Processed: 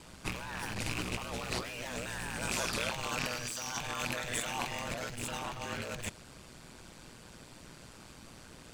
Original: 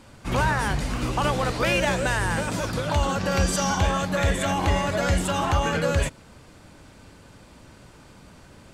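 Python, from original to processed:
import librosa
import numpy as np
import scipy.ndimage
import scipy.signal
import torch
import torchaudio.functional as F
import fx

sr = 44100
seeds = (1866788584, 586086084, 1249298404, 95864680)

y = fx.rattle_buzz(x, sr, strikes_db=-27.0, level_db=-17.0)
y = fx.high_shelf(y, sr, hz=2200.0, db=7.5)
y = y * np.sin(2.0 * np.pi * 60.0 * np.arange(len(y)) / sr)
y = fx.low_shelf(y, sr, hz=460.0, db=-7.5, at=(2.51, 4.8))
y = np.clip(y, -10.0 ** (-23.0 / 20.0), 10.0 ** (-23.0 / 20.0))
y = fx.over_compress(y, sr, threshold_db=-31.0, ratio=-0.5)
y = y * 10.0 ** (-5.5 / 20.0)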